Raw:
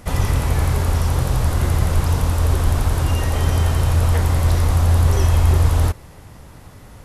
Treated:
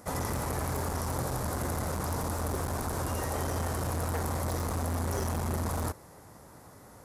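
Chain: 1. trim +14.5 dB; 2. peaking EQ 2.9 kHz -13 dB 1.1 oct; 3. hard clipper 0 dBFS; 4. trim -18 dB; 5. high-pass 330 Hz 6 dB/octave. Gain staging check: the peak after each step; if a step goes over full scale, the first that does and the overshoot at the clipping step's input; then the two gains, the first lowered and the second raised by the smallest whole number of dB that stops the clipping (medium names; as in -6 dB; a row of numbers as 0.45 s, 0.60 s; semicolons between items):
+10.5 dBFS, +10.0 dBFS, 0.0 dBFS, -18.0 dBFS, -17.0 dBFS; step 1, 10.0 dB; step 1 +4.5 dB, step 4 -8 dB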